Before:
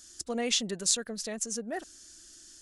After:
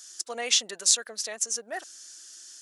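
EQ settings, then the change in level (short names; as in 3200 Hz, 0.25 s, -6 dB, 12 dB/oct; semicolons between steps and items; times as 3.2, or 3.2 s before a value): HPF 690 Hz 12 dB/oct; bell 5800 Hz +3 dB 0.29 oct; +4.5 dB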